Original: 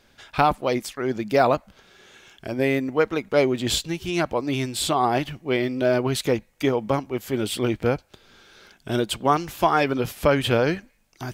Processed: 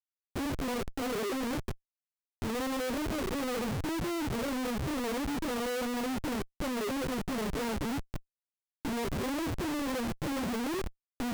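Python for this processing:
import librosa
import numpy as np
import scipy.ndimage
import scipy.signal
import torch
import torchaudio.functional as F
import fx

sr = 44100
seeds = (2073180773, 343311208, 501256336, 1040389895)

y = fx.pitch_bins(x, sr, semitones=11.5)
y = scipy.signal.sosfilt(scipy.signal.cheby2(4, 80, 2600.0, 'lowpass', fs=sr, output='sos'), y)
y = fx.leveller(y, sr, passes=3)
y = fx.schmitt(y, sr, flips_db=-46.0)
y = F.gain(torch.from_numpy(y), -4.0).numpy()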